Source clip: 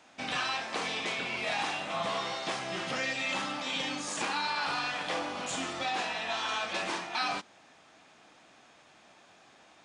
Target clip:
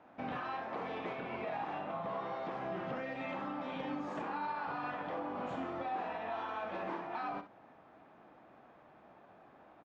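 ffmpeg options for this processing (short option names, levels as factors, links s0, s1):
-af "lowpass=1100,alimiter=level_in=2.82:limit=0.0631:level=0:latency=1:release=197,volume=0.355,aecho=1:1:48|65:0.178|0.237,volume=1.26"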